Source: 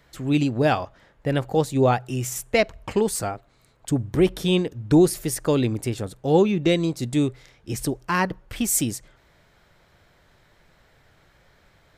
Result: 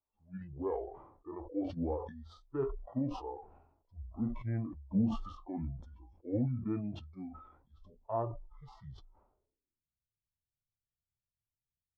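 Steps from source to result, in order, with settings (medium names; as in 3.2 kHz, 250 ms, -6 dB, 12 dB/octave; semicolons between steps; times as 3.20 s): median filter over 3 samples; flange 0.25 Hz, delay 9.1 ms, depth 1.4 ms, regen -61%; pitch shift -8 st; low-pass sweep 860 Hz -> 140 Hz, 9.28–9.96 s; harmonic-percussive split percussive -13 dB; spectral noise reduction 23 dB; decay stretcher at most 72 dB/s; trim -8.5 dB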